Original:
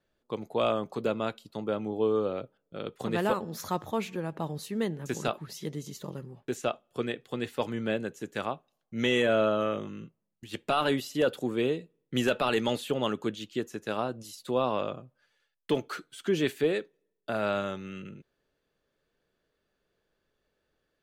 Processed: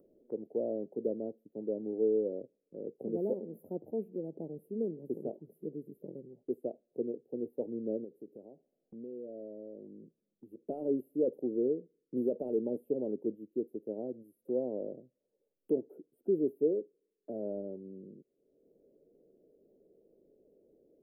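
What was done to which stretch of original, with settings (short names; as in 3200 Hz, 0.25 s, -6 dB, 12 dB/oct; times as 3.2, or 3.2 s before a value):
8.04–10.67 compressor 2.5:1, threshold -42 dBFS
whole clip: inverse Chebyshev band-stop 1100–6400 Hz, stop band 50 dB; three-band isolator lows -22 dB, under 230 Hz, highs -20 dB, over 2900 Hz; upward compressor, threshold -49 dBFS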